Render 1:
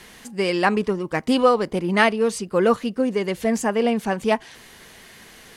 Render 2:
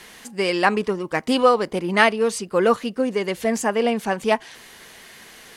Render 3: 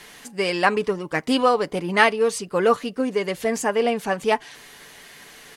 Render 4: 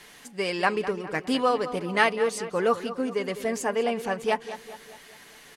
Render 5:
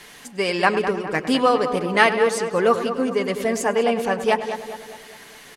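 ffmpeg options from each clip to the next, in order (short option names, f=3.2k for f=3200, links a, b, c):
-af "lowshelf=f=250:g=-7.5,volume=2dB"
-af "aecho=1:1:6.9:0.34,volume=-1dB"
-filter_complex "[0:a]asplit=2[a][b];[b]adelay=204,lowpass=f=3.8k:p=1,volume=-12.5dB,asplit=2[c][d];[d]adelay=204,lowpass=f=3.8k:p=1,volume=0.51,asplit=2[e][f];[f]adelay=204,lowpass=f=3.8k:p=1,volume=0.51,asplit=2[g][h];[h]adelay=204,lowpass=f=3.8k:p=1,volume=0.51,asplit=2[i][j];[j]adelay=204,lowpass=f=3.8k:p=1,volume=0.51[k];[a][c][e][g][i][k]amix=inputs=6:normalize=0,volume=-5dB"
-filter_complex "[0:a]asplit=2[a][b];[b]adelay=102,lowpass=f=2.5k:p=1,volume=-12.5dB,asplit=2[c][d];[d]adelay=102,lowpass=f=2.5k:p=1,volume=0.52,asplit=2[e][f];[f]adelay=102,lowpass=f=2.5k:p=1,volume=0.52,asplit=2[g][h];[h]adelay=102,lowpass=f=2.5k:p=1,volume=0.52,asplit=2[i][j];[j]adelay=102,lowpass=f=2.5k:p=1,volume=0.52[k];[a][c][e][g][i][k]amix=inputs=6:normalize=0,volume=5.5dB"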